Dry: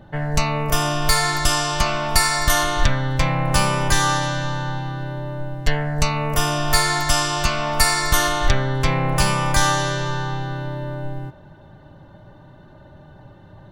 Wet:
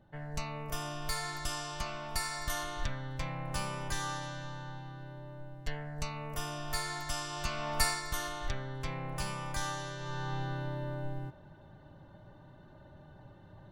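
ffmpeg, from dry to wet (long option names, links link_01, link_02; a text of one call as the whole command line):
ffmpeg -i in.wav -af "volume=-3dB,afade=type=in:start_time=7.27:duration=0.56:silence=0.501187,afade=type=out:start_time=7.83:duration=0.19:silence=0.473151,afade=type=in:start_time=9.98:duration=0.43:silence=0.354813" out.wav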